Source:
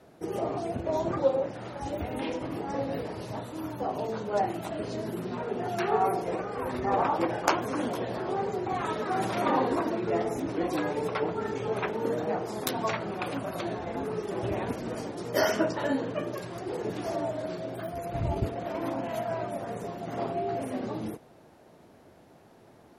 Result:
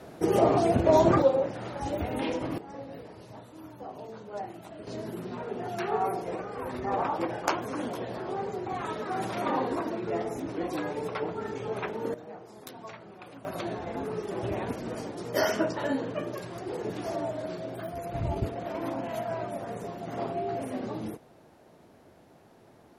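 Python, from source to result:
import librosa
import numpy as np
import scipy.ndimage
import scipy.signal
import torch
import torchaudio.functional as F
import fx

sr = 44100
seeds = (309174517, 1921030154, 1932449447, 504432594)

y = fx.gain(x, sr, db=fx.steps((0.0, 9.0), (1.22, 2.0), (2.58, -10.0), (4.87, -3.0), (12.14, -14.0), (13.45, -1.0)))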